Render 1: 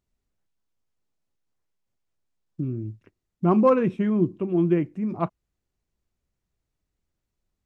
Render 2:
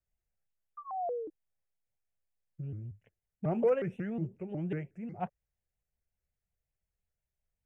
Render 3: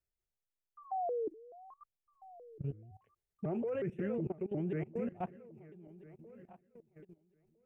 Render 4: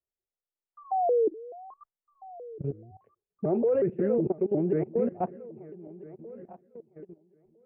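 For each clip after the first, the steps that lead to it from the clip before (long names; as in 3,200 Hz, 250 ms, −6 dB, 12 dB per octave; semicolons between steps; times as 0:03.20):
sound drawn into the spectrogram fall, 0:00.77–0:01.30, 350–1,300 Hz −27 dBFS; phaser with its sweep stopped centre 1,100 Hz, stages 6; pitch modulation by a square or saw wave saw up 5.5 Hz, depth 250 cents; level −6.5 dB
feedback delay that plays each chunk backwards 653 ms, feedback 49%, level −12.5 dB; parametric band 380 Hz +8.5 dB 0.53 octaves; output level in coarse steps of 19 dB; level +3 dB
low-pass filter 1,800 Hz 12 dB per octave; parametric band 450 Hz +12.5 dB 2.6 octaves; noise reduction from a noise print of the clip's start 12 dB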